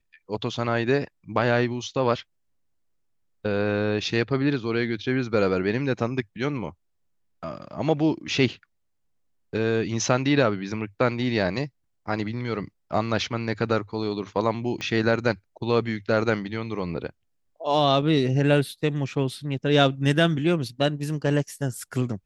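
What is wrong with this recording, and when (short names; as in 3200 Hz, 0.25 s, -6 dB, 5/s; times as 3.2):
14.81 pop -18 dBFS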